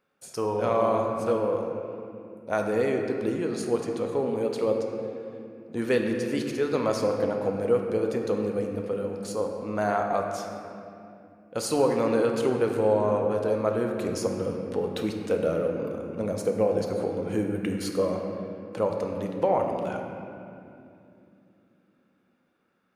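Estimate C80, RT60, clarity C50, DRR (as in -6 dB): 4.0 dB, 2.7 s, 3.5 dB, 2.0 dB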